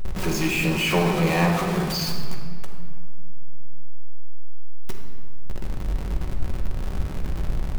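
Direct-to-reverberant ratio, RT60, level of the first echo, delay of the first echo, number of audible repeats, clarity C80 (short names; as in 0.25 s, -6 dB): 0.5 dB, 2.0 s, none, none, none, 5.5 dB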